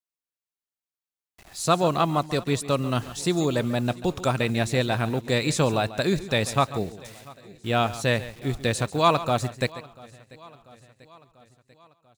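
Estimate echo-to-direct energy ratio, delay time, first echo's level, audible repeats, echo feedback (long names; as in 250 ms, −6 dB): −14.5 dB, 140 ms, −15.5 dB, 4, repeats not evenly spaced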